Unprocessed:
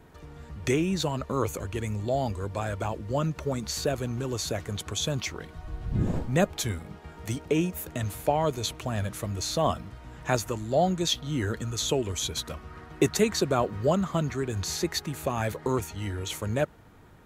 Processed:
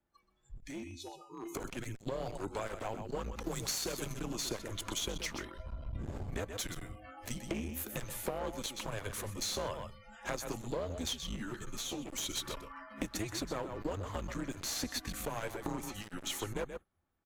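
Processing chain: 0.62–1.55 s: feedback comb 440 Hz, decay 0.54 s, mix 90%; 3.46–4.20 s: treble shelf 2.8 kHz +12 dB; spectral noise reduction 29 dB; frequency shift -100 Hz; delay 127 ms -12 dB; compression 12:1, threshold -31 dBFS, peak gain reduction 15 dB; one-sided clip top -40.5 dBFS; bass shelf 140 Hz -4 dB; 11.36–12.06 s: three-phase chorus; trim +1 dB

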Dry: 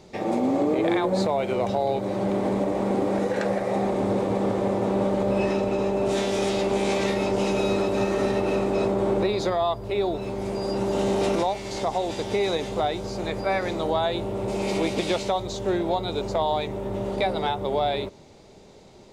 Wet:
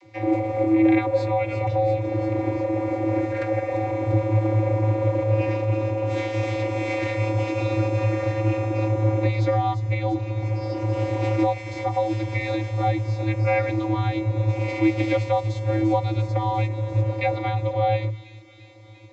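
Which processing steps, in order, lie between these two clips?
peaking EQ 2.2 kHz +13 dB 0.33 oct; vocoder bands 32, square 108 Hz; on a send: feedback echo behind a high-pass 346 ms, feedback 74%, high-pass 4.7 kHz, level -6 dB; on the sum: trim +2 dB

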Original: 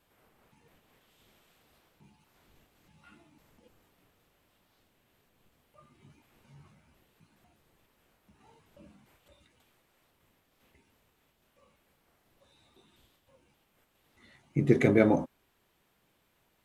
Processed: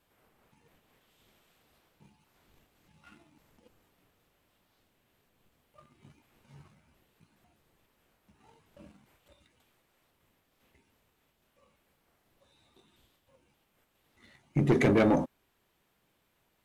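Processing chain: saturation -16.5 dBFS, distortion -13 dB; waveshaping leveller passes 1

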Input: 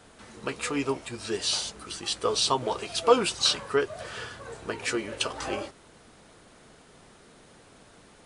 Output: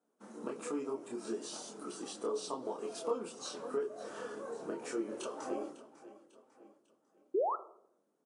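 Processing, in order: gate -48 dBFS, range -24 dB; high-order bell 2.9 kHz -9 dB; feedback delay 548 ms, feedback 41%, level -22 dB; compression 3:1, threshold -37 dBFS, peak gain reduction 17.5 dB; chorus voices 4, 0.56 Hz, delay 27 ms, depth 4 ms; painted sound rise, 7.34–7.56 s, 340–1400 Hz -33 dBFS; high-pass 230 Hz 24 dB/octave; tilt shelf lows +6 dB, about 670 Hz; on a send at -12 dB: reverberation RT60 0.75 s, pre-delay 4 ms; on the sum: trim +1.5 dB

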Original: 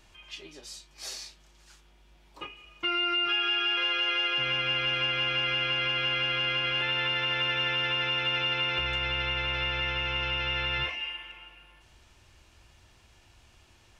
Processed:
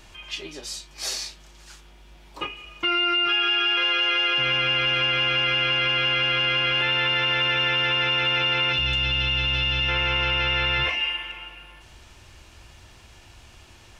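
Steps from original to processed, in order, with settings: time-frequency box 8.72–9.89 s, 340–2500 Hz -9 dB; in parallel at -2.5 dB: compressor with a negative ratio -33 dBFS; on the sum: trim +3 dB

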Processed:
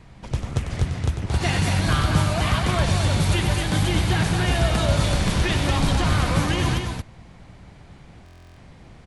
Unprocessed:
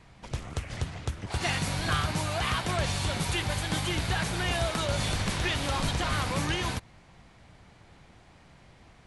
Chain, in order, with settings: bass shelf 430 Hz +7 dB; on a send: loudspeakers at several distances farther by 33 m -8 dB, 77 m -5 dB; on the sum: buffer glitch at 8.24 s, samples 1024, times 13; trim +2.5 dB

